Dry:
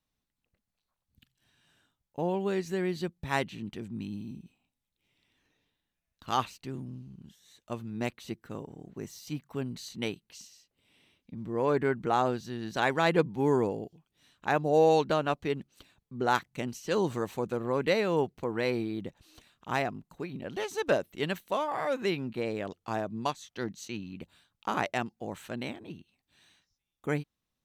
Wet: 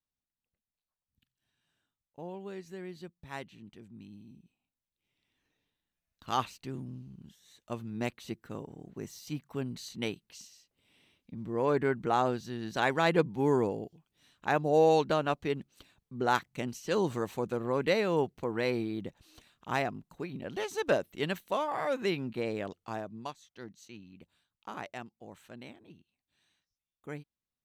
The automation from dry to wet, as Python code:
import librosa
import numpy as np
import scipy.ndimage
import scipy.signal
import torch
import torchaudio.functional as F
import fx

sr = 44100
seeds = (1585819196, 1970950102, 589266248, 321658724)

y = fx.gain(x, sr, db=fx.line((4.22, -12.0), (6.52, -1.0), (22.63, -1.0), (23.41, -11.0)))